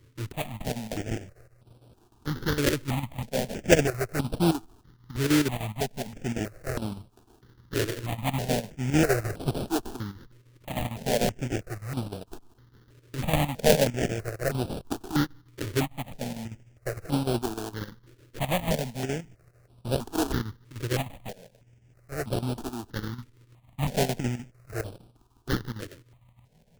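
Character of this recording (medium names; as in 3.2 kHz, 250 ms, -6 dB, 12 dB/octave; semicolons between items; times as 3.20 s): aliases and images of a low sample rate 1.1 kHz, jitter 20%; chopped level 6.6 Hz, depth 65%, duty 75%; a quantiser's noise floor 12-bit, dither none; notches that jump at a steady rate 3.1 Hz 200–6700 Hz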